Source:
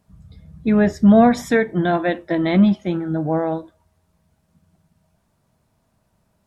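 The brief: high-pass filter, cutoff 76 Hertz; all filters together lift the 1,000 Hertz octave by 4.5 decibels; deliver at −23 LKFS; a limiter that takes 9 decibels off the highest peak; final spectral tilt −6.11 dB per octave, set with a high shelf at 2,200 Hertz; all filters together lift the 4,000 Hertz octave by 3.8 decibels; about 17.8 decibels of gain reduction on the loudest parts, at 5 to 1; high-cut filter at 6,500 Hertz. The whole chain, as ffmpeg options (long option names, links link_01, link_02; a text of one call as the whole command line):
ffmpeg -i in.wav -af "highpass=76,lowpass=6500,equalizer=frequency=1000:width_type=o:gain=8,highshelf=frequency=2200:gain=-5,equalizer=frequency=4000:width_type=o:gain=9,acompressor=threshold=-28dB:ratio=5,volume=12dB,alimiter=limit=-13.5dB:level=0:latency=1" out.wav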